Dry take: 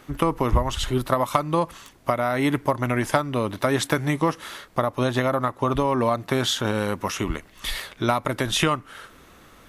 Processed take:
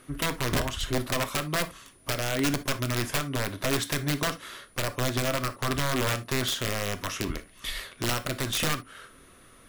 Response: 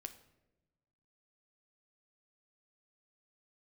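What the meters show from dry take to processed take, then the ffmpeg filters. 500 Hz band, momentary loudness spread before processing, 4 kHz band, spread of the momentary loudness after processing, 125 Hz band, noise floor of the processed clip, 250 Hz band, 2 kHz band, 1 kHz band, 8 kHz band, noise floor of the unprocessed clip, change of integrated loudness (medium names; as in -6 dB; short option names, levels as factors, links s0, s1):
-8.0 dB, 8 LU, -1.0 dB, 8 LU, -4.0 dB, -55 dBFS, -7.0 dB, -2.0 dB, -9.0 dB, +1.5 dB, -51 dBFS, -5.0 dB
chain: -filter_complex "[0:a]aeval=exprs='(mod(5.62*val(0)+1,2)-1)/5.62':c=same,aeval=exprs='val(0)+0.00251*sin(2*PI*9700*n/s)':c=same,equalizer=f=840:t=o:w=0.24:g=-8.5[s0];[1:a]atrim=start_sample=2205,atrim=end_sample=3528[s1];[s0][s1]afir=irnorm=-1:irlink=0"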